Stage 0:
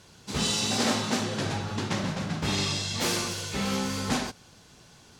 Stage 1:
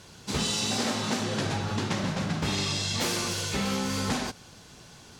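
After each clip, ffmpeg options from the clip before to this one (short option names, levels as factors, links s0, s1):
-af "acompressor=threshold=0.0355:ratio=6,volume=1.58"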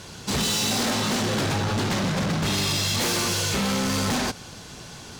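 -af "asoftclip=type=hard:threshold=0.0282,volume=2.82"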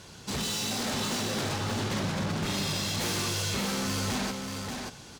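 -af "aecho=1:1:584:0.596,volume=0.422"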